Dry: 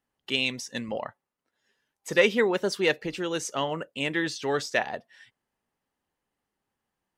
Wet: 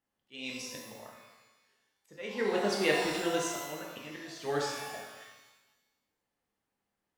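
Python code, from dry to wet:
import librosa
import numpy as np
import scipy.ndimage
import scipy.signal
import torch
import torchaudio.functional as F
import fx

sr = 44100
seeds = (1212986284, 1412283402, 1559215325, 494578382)

y = fx.auto_swell(x, sr, attack_ms=446.0)
y = fx.rev_shimmer(y, sr, seeds[0], rt60_s=1.1, semitones=12, shimmer_db=-8, drr_db=-2.0)
y = y * librosa.db_to_amplitude(-6.5)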